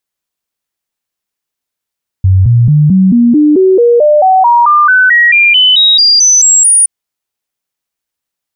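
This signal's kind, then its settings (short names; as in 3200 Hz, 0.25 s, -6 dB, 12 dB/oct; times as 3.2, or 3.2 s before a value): stepped sine 94.3 Hz up, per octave 3, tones 21, 0.22 s, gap 0.00 s -3 dBFS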